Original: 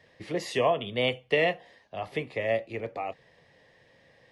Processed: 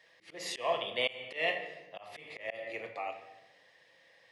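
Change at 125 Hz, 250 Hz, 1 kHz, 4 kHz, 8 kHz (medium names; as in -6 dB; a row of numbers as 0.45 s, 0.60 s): -20.0 dB, -15.5 dB, -6.0 dB, -2.5 dB, no reading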